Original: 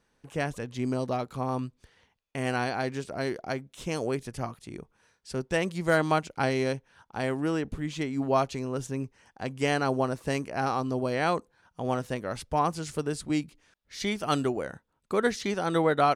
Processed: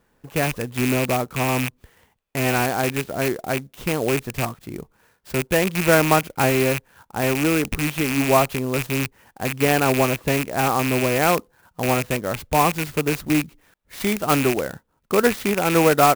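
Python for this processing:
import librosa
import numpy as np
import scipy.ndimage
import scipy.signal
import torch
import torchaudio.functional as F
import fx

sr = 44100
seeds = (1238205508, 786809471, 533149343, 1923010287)

y = fx.rattle_buzz(x, sr, strikes_db=-37.0, level_db=-20.0)
y = fx.high_shelf(y, sr, hz=3900.0, db=-7.0)
y = fx.clock_jitter(y, sr, seeds[0], jitter_ms=0.045)
y = y * 10.0 ** (8.0 / 20.0)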